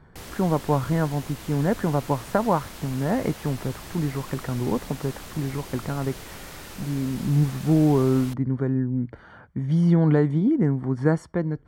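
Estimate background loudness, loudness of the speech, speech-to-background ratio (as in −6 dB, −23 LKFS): −40.0 LKFS, −24.5 LKFS, 15.5 dB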